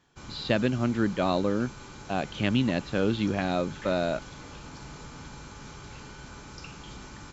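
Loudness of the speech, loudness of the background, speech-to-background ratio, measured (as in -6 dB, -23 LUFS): -28.0 LUFS, -44.0 LUFS, 16.0 dB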